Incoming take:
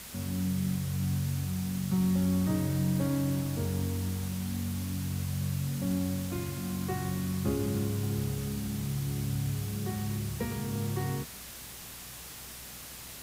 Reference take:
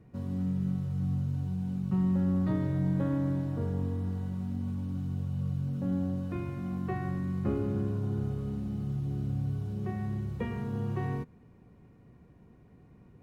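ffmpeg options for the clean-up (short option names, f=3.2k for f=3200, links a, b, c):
-af "adeclick=t=4,bandreject=f=61.4:t=h:w=4,bandreject=f=122.8:t=h:w=4,bandreject=f=184.2:t=h:w=4,bandreject=f=245.6:t=h:w=4,afwtdn=0.0063"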